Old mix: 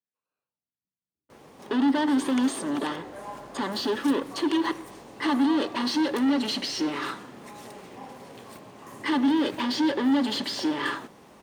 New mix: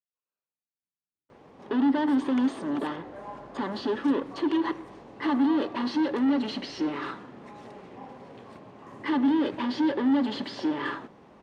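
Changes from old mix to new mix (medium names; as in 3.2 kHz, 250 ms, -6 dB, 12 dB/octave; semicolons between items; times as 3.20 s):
speech -8.5 dB; background: add tape spacing loss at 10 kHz 22 dB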